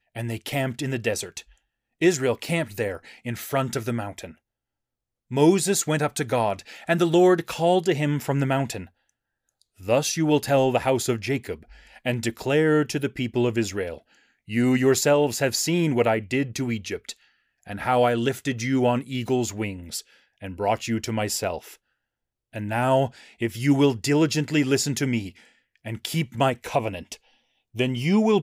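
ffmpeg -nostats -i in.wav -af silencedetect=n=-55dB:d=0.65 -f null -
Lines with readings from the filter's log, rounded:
silence_start: 4.38
silence_end: 5.31 | silence_duration: 0.92
silence_start: 21.76
silence_end: 22.53 | silence_duration: 0.77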